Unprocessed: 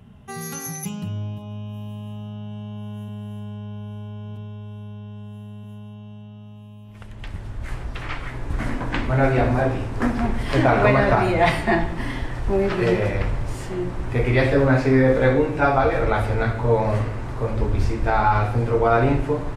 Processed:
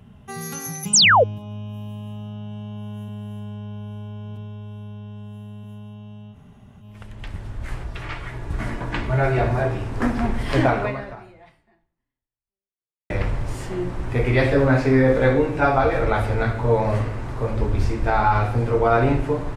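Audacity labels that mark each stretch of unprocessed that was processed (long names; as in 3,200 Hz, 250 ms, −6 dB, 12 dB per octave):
0.930000	1.240000	sound drawn into the spectrogram fall 430–9,100 Hz −13 dBFS
6.340000	6.820000	fill with room tone, crossfade 0.06 s
7.840000	9.860000	notch comb filter 260 Hz
10.650000	13.100000	fade out exponential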